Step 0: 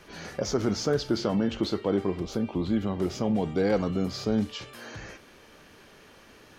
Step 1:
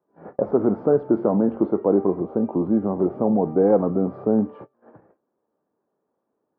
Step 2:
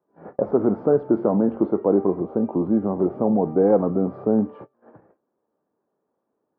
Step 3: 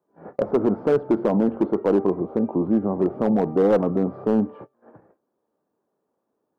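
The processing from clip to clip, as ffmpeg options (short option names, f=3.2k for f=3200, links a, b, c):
-af "highpass=210,agate=range=-28dB:threshold=-40dB:ratio=16:detection=peak,lowpass=f=1k:w=0.5412,lowpass=f=1k:w=1.3066,volume=8.5dB"
-af anull
-af "volume=12dB,asoftclip=hard,volume=-12dB"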